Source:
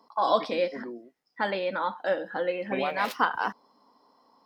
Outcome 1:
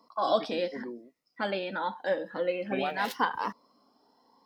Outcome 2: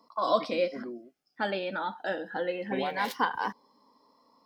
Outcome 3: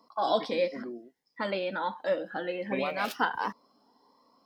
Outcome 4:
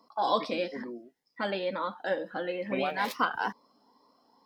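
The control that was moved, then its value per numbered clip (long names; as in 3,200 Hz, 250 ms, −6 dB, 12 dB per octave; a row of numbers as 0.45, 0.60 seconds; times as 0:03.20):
phaser whose notches keep moving one way, speed: 0.84, 0.22, 1.4, 2.2 Hertz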